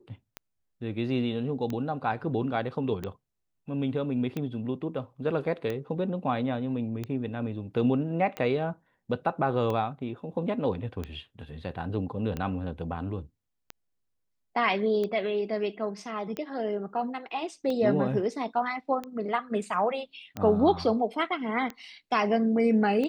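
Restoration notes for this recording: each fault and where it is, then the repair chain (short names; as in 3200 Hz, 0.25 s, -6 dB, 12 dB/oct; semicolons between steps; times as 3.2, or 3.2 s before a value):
tick 45 rpm -20 dBFS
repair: de-click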